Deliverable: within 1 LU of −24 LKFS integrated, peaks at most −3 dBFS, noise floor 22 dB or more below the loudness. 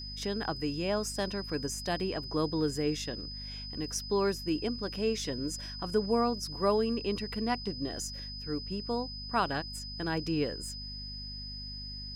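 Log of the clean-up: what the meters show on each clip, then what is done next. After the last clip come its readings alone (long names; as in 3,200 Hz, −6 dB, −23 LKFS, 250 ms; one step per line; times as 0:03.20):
mains hum 50 Hz; hum harmonics up to 250 Hz; level of the hum −42 dBFS; interfering tone 5,000 Hz; level of the tone −41 dBFS; integrated loudness −33.0 LKFS; sample peak −15.5 dBFS; target loudness −24.0 LKFS
→ hum removal 50 Hz, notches 5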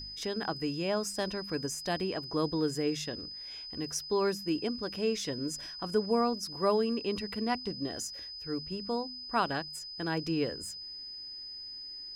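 mains hum none found; interfering tone 5,000 Hz; level of the tone −41 dBFS
→ notch filter 5,000 Hz, Q 30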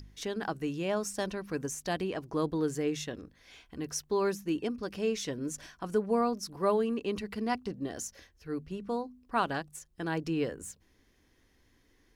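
interfering tone none found; integrated loudness −33.5 LKFS; sample peak −16.5 dBFS; target loudness −24.0 LKFS
→ level +9.5 dB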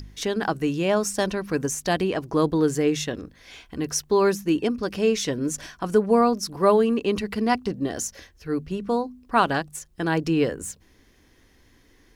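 integrated loudness −24.0 LKFS; sample peak −7.0 dBFS; background noise floor −58 dBFS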